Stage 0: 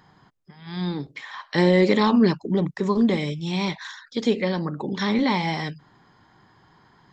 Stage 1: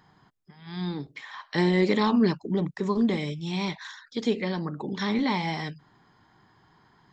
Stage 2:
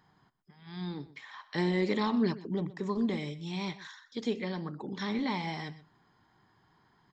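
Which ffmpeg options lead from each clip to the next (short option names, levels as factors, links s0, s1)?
-af "bandreject=f=540:w=12,volume=0.631"
-af "aecho=1:1:124:0.133,volume=0.473"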